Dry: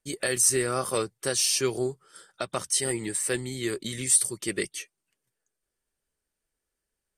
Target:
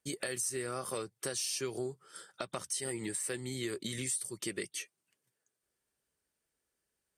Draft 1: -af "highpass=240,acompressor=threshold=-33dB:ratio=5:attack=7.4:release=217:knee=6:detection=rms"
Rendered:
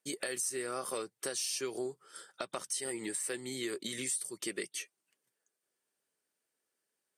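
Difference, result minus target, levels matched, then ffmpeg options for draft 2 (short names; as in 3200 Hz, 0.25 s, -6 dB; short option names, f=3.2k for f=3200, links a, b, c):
125 Hz band -10.0 dB
-af "highpass=74,acompressor=threshold=-33dB:ratio=5:attack=7.4:release=217:knee=6:detection=rms"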